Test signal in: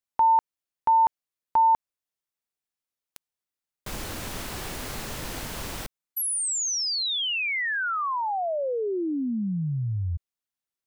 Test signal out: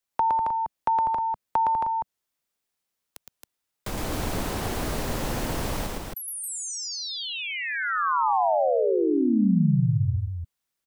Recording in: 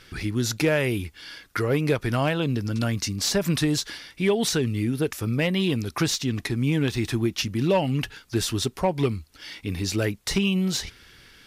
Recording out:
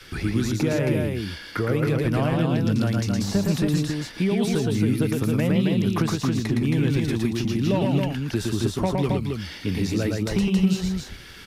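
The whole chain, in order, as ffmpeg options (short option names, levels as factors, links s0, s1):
-filter_complex "[0:a]adynamicequalizer=threshold=0.00891:dfrequency=200:dqfactor=3:tfrequency=200:tqfactor=3:attack=5:release=100:ratio=0.375:range=2.5:mode=boostabove:tftype=bell,acrossover=split=140|1100[s0][s1][s2];[s0]acompressor=threshold=0.0158:ratio=4[s3];[s1]acompressor=threshold=0.0316:ratio=4[s4];[s2]acompressor=threshold=0.00631:ratio=4[s5];[s3][s4][s5]amix=inputs=3:normalize=0,aecho=1:1:113.7|271.1:0.708|0.631,volume=1.88"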